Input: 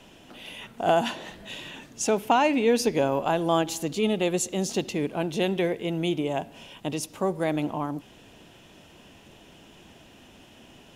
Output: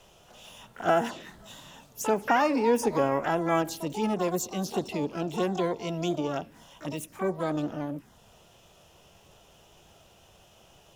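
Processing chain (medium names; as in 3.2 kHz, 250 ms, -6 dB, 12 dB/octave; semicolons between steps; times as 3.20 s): touch-sensitive phaser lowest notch 240 Hz, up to 4.1 kHz, full sweep at -20 dBFS; harmony voices +12 st -7 dB; trim -2.5 dB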